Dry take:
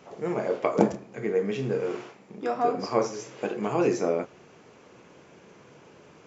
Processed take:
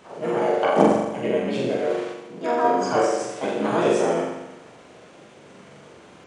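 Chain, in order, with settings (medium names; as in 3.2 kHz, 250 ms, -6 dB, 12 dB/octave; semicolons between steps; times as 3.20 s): flutter echo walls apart 7.2 m, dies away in 1 s; harmony voices +5 st -2 dB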